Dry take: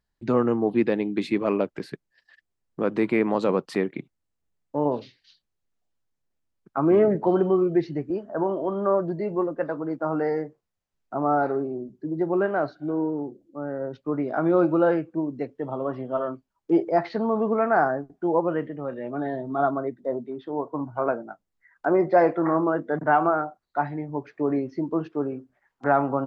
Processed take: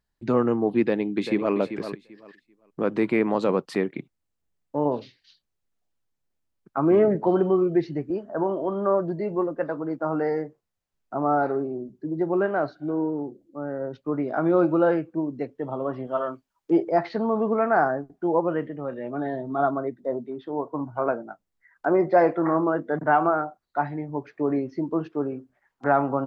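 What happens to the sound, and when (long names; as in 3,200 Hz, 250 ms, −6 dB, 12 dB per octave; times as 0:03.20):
0:00.87–0:01.53: delay throw 390 ms, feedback 20%, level −10 dB
0:16.07–0:16.71: tilt shelving filter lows −4.5 dB, about 640 Hz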